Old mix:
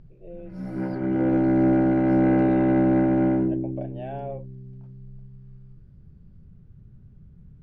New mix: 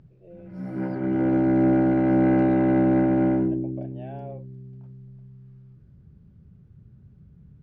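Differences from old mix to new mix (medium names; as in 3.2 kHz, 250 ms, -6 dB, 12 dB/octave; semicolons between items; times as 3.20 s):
speech -5.5 dB; master: add high-pass 61 Hz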